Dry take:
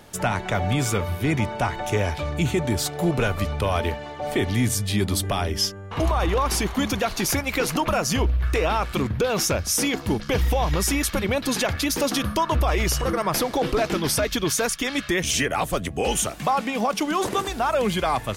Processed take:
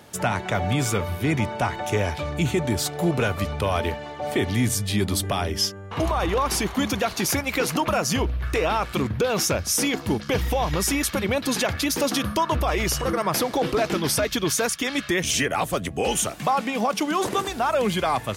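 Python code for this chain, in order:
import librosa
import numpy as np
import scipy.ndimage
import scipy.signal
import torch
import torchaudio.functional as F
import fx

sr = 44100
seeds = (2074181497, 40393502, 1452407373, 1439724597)

y = scipy.signal.sosfilt(scipy.signal.butter(2, 75.0, 'highpass', fs=sr, output='sos'), x)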